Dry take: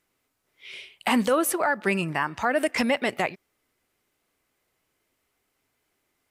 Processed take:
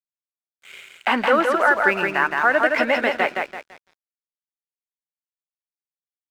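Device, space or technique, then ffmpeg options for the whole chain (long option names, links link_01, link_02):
pocket radio on a weak battery: -af "highpass=350,lowpass=3100,aecho=1:1:168|336|504|672|840:0.668|0.254|0.0965|0.0367|0.0139,aeval=exprs='sgn(val(0))*max(abs(val(0))-0.00422,0)':channel_layout=same,equalizer=frequency=1500:width_type=o:width=0.33:gain=8.5,volume=4.5dB"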